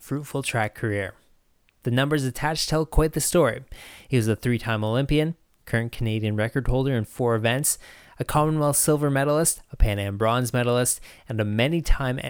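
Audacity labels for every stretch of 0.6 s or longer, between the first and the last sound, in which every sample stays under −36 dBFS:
1.100000	1.850000	silence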